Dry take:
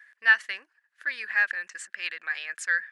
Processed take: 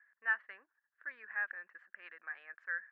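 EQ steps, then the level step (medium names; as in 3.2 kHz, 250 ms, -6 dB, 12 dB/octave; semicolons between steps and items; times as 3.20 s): high-pass 170 Hz; four-pole ladder low-pass 1.8 kHz, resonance 25%; -5.0 dB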